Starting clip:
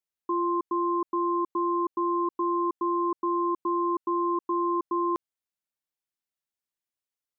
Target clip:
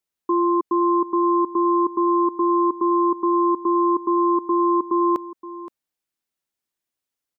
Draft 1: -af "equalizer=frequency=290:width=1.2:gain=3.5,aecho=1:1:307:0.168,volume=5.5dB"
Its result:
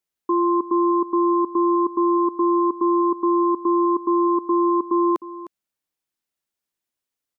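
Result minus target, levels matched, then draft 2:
echo 214 ms early
-af "equalizer=frequency=290:width=1.2:gain=3.5,aecho=1:1:521:0.168,volume=5.5dB"

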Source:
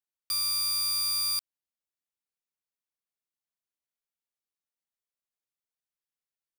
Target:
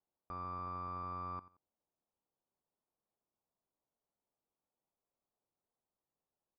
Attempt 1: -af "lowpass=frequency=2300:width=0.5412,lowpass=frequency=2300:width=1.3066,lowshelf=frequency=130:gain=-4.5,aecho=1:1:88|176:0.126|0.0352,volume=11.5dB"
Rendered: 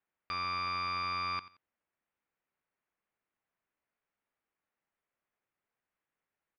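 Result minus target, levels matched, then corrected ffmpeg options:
2,000 Hz band +15.5 dB
-af "lowpass=frequency=970:width=0.5412,lowpass=frequency=970:width=1.3066,lowshelf=frequency=130:gain=-4.5,aecho=1:1:88|176:0.126|0.0352,volume=11.5dB"

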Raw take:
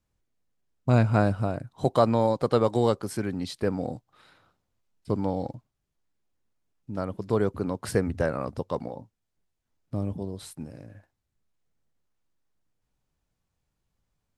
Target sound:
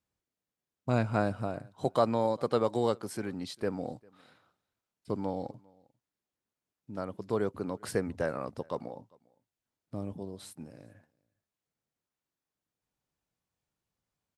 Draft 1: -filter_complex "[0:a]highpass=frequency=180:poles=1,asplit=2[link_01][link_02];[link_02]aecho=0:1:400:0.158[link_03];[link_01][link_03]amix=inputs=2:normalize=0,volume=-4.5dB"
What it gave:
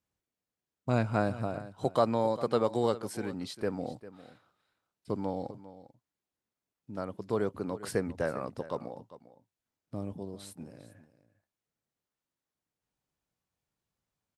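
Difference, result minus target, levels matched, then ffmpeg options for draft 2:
echo-to-direct +11.5 dB
-filter_complex "[0:a]highpass=frequency=180:poles=1,asplit=2[link_01][link_02];[link_02]aecho=0:1:400:0.0422[link_03];[link_01][link_03]amix=inputs=2:normalize=0,volume=-4.5dB"

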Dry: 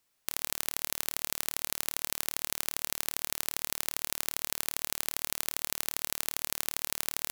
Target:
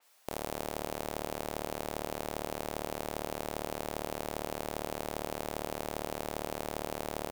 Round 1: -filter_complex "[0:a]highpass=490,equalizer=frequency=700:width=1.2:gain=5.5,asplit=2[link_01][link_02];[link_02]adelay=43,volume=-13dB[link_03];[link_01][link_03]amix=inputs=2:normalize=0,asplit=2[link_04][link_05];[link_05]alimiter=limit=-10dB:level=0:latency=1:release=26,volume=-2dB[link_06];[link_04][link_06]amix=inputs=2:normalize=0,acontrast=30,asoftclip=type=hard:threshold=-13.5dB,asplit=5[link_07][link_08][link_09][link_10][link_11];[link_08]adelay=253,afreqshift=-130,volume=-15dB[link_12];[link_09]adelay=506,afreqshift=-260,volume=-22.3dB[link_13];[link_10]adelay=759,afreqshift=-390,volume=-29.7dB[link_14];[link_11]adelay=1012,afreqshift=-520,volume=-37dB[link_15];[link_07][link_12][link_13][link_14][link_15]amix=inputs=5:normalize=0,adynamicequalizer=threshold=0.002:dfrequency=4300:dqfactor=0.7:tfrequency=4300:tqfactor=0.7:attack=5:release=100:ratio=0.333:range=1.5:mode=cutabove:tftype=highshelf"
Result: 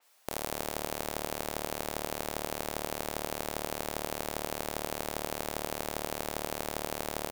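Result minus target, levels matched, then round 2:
hard clipping: distortion −4 dB
-filter_complex "[0:a]highpass=490,equalizer=frequency=700:width=1.2:gain=5.5,asplit=2[link_01][link_02];[link_02]adelay=43,volume=-13dB[link_03];[link_01][link_03]amix=inputs=2:normalize=0,asplit=2[link_04][link_05];[link_05]alimiter=limit=-10dB:level=0:latency=1:release=26,volume=-2dB[link_06];[link_04][link_06]amix=inputs=2:normalize=0,acontrast=30,asoftclip=type=hard:threshold=-21dB,asplit=5[link_07][link_08][link_09][link_10][link_11];[link_08]adelay=253,afreqshift=-130,volume=-15dB[link_12];[link_09]adelay=506,afreqshift=-260,volume=-22.3dB[link_13];[link_10]adelay=759,afreqshift=-390,volume=-29.7dB[link_14];[link_11]adelay=1012,afreqshift=-520,volume=-37dB[link_15];[link_07][link_12][link_13][link_14][link_15]amix=inputs=5:normalize=0,adynamicequalizer=threshold=0.002:dfrequency=4300:dqfactor=0.7:tfrequency=4300:tqfactor=0.7:attack=5:release=100:ratio=0.333:range=1.5:mode=cutabove:tftype=highshelf"

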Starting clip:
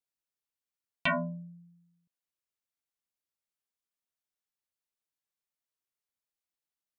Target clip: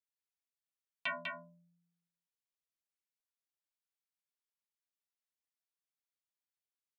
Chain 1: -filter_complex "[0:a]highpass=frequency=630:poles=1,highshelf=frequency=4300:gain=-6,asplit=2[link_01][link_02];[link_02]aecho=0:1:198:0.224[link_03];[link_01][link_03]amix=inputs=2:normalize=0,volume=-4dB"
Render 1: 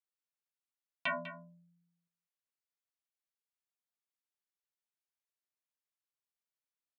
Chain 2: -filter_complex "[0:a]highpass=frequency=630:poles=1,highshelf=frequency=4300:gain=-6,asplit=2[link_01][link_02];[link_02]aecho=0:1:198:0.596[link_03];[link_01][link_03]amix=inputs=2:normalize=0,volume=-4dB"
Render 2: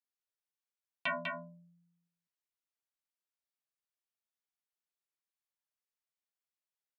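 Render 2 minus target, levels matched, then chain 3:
500 Hz band +3.5 dB
-filter_complex "[0:a]highpass=frequency=1700:poles=1,highshelf=frequency=4300:gain=-6,asplit=2[link_01][link_02];[link_02]aecho=0:1:198:0.596[link_03];[link_01][link_03]amix=inputs=2:normalize=0,volume=-4dB"

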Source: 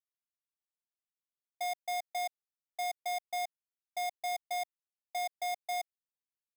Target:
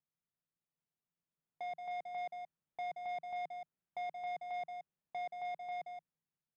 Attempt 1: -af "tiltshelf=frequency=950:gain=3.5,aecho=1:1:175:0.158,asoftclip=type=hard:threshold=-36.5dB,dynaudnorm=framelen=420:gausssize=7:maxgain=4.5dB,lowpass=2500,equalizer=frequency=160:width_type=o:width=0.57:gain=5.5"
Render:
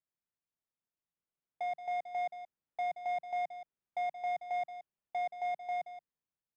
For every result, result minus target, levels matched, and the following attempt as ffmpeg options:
125 Hz band −8.0 dB; hard clipping: distortion −6 dB
-af "tiltshelf=frequency=950:gain=3.5,aecho=1:1:175:0.158,asoftclip=type=hard:threshold=-36.5dB,dynaudnorm=framelen=420:gausssize=7:maxgain=4.5dB,lowpass=2500,equalizer=frequency=160:width_type=o:width=0.57:gain=15"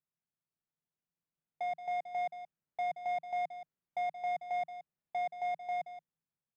hard clipping: distortion −6 dB
-af "tiltshelf=frequency=950:gain=3.5,aecho=1:1:175:0.158,asoftclip=type=hard:threshold=-43dB,dynaudnorm=framelen=420:gausssize=7:maxgain=4.5dB,lowpass=2500,equalizer=frequency=160:width_type=o:width=0.57:gain=15"

